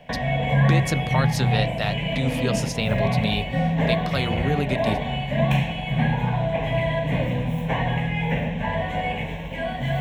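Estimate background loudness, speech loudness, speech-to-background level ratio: −24.0 LKFS, −28.0 LKFS, −4.0 dB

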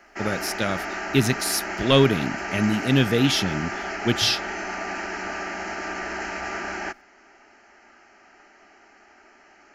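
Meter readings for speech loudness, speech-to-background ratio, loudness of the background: −23.0 LKFS, 7.0 dB, −30.0 LKFS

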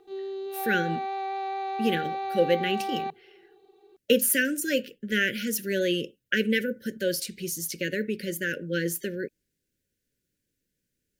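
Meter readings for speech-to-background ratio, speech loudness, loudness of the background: 5.0 dB, −27.5 LKFS, −32.5 LKFS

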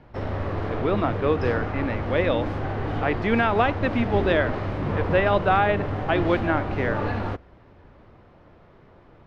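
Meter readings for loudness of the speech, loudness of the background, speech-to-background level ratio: −25.0 LKFS, −28.5 LKFS, 3.5 dB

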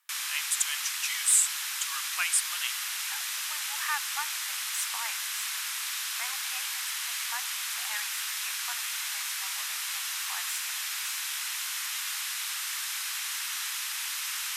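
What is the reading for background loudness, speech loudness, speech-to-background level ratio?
−31.0 LKFS, −31.5 LKFS, −0.5 dB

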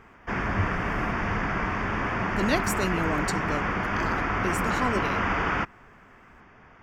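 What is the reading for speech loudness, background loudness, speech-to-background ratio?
−31.5 LKFS, −27.5 LKFS, −4.0 dB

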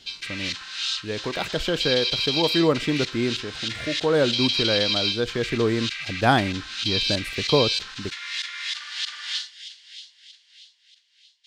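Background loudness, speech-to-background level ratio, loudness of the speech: −26.5 LKFS, 1.5 dB, −25.0 LKFS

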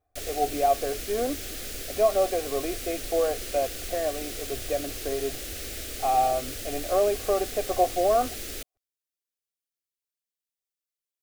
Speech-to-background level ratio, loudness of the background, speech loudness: 7.0 dB, −34.5 LKFS, −27.5 LKFS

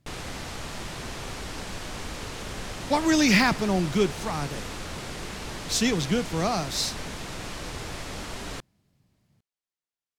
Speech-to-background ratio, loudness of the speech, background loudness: 11.0 dB, −25.0 LKFS, −36.0 LKFS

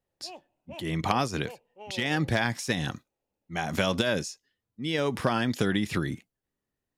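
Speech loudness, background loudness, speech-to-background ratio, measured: −29.0 LKFS, −48.0 LKFS, 19.0 dB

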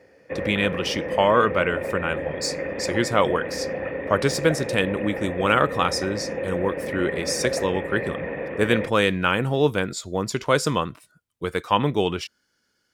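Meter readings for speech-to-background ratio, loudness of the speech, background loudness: 5.5 dB, −24.0 LKFS, −29.5 LKFS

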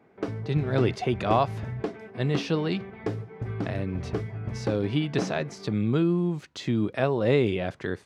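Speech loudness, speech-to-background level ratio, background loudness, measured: −27.5 LKFS, 7.5 dB, −35.0 LKFS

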